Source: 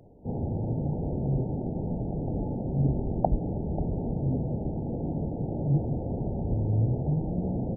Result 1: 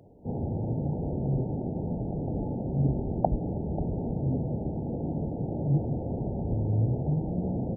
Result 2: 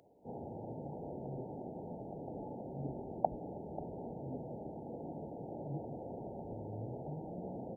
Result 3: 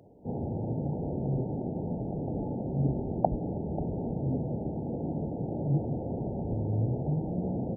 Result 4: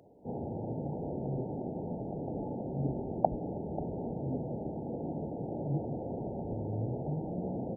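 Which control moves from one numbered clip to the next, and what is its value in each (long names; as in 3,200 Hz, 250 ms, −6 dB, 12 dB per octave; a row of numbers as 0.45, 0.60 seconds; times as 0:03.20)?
high-pass filter, corner frequency: 47, 1,200, 140, 390 Hertz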